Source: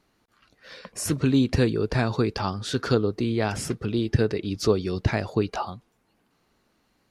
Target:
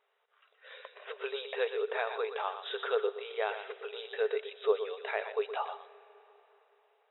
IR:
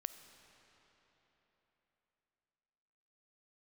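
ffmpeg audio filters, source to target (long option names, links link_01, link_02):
-filter_complex "[0:a]asplit=2[link_01][link_02];[1:a]atrim=start_sample=2205,highshelf=frequency=3800:gain=8.5,adelay=121[link_03];[link_02][link_03]afir=irnorm=-1:irlink=0,volume=-7.5dB[link_04];[link_01][link_04]amix=inputs=2:normalize=0,afftfilt=real='re*between(b*sr/4096,390,3900)':imag='im*between(b*sr/4096,390,3900)':win_size=4096:overlap=0.75,volume=-5dB"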